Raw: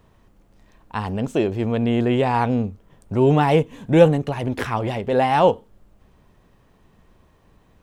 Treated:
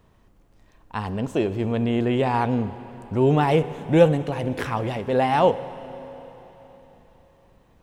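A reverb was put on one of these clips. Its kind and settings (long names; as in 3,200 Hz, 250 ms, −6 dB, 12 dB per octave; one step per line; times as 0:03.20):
four-comb reverb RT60 3.9 s, combs from 31 ms, DRR 13.5 dB
level −2.5 dB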